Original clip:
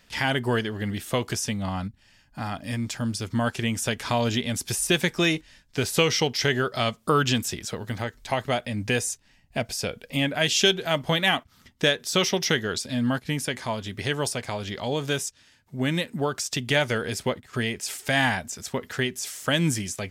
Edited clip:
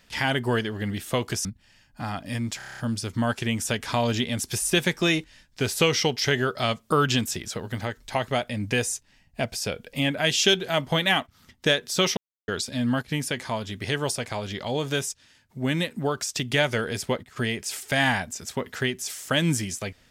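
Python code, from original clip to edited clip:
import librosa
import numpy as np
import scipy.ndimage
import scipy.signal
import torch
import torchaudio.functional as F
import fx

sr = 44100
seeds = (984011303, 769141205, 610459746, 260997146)

y = fx.edit(x, sr, fx.cut(start_s=1.45, length_s=0.38),
    fx.stutter(start_s=2.95, slice_s=0.03, count=8),
    fx.silence(start_s=12.34, length_s=0.31), tone=tone)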